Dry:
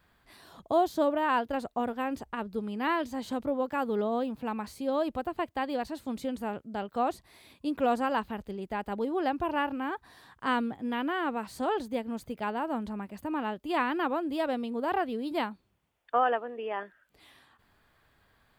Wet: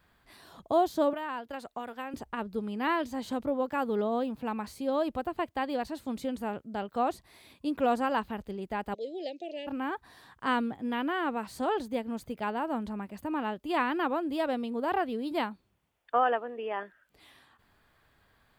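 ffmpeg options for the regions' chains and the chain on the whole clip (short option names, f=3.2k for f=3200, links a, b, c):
-filter_complex "[0:a]asettb=1/sr,asplit=3[a][b][c];[a]atrim=end=1.134[d];[b]atrim=start=1.13:end=2.14,asetpts=PTS-STARTPTS,afade=t=in:d=0.004:c=qsin,afade=t=out:st=1.006:d=0.004:c=qsin,acrossover=split=340|1100[e][f][g];[e]acompressor=threshold=-45dB:ratio=4[h];[f]acompressor=threshold=-40dB:ratio=4[i];[g]acompressor=threshold=-40dB:ratio=4[j];[h][i][j]amix=inputs=3:normalize=0,equalizer=f=70:w=0.35:g=-6.5[k];[c]atrim=start=2.136[l];[d][k]acrossfade=d=0.004:c1=hsin:c2=qsin[m];[m][l]acrossfade=d=0.004:c1=qsin:c2=hsin,asettb=1/sr,asplit=3[n][o][p];[n]atrim=end=8.944[q];[o]atrim=start=8.94:end=9.67,asetpts=PTS-STARTPTS,afade=t=in:d=0.004:c=qsin,afade=t=out:st=0.726:d=0.004:c=qsin,asuperstop=centerf=1200:order=8:qfactor=0.66,highpass=f=400:w=0.5412,highpass=f=400:w=1.3066,equalizer=f=410:t=q:w=4:g=-5,equalizer=f=680:t=q:w=4:g=3,equalizer=f=1.8k:t=q:w=4:g=3,equalizer=f=2.7k:t=q:w=4:g=-5,equalizer=f=3.9k:t=q:w=4:g=4,equalizer=f=6.4k:t=q:w=4:g=6,lowpass=f=6.9k:w=0.5412,lowpass=f=6.9k:w=1.3066[r];[p]atrim=start=9.666[s];[q][r]acrossfade=d=0.004:c1=hsin:c2=qsin[t];[t][s]acrossfade=d=0.004:c1=qsin:c2=hsin"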